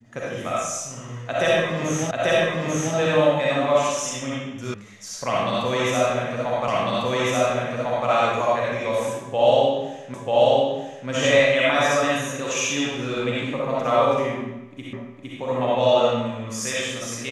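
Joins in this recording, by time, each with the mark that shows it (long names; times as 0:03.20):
0:02.11: the same again, the last 0.84 s
0:04.74: cut off before it has died away
0:06.68: the same again, the last 1.4 s
0:10.14: the same again, the last 0.94 s
0:14.93: the same again, the last 0.46 s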